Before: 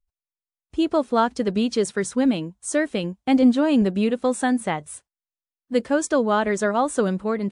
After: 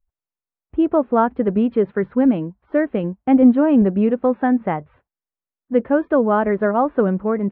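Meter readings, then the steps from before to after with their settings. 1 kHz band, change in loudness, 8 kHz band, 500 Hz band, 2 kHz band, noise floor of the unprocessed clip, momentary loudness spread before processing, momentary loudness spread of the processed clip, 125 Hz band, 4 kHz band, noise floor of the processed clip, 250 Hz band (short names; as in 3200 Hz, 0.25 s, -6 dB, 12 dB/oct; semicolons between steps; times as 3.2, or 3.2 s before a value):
+3.0 dB, +4.0 dB, under -40 dB, +4.0 dB, -1.0 dB, under -85 dBFS, 9 LU, 9 LU, +4.5 dB, under -10 dB, under -85 dBFS, +4.5 dB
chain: Gaussian blur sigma 4.6 samples; gain +4.5 dB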